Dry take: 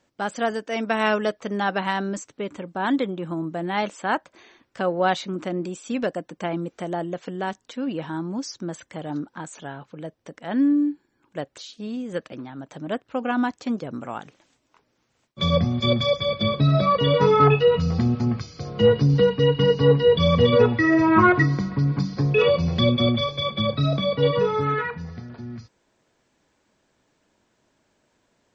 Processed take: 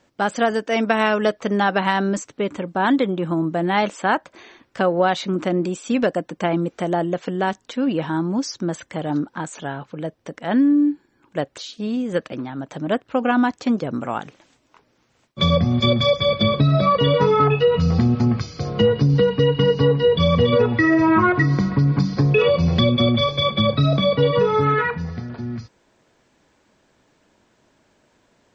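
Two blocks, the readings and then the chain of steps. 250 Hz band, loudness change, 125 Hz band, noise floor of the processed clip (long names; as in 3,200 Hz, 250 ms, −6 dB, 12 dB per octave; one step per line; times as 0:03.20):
+4.0 dB, +2.5 dB, +3.0 dB, −63 dBFS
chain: high-shelf EQ 6,200 Hz −4.5 dB
downward compressor, threshold −20 dBFS, peak gain reduction 9 dB
level +7 dB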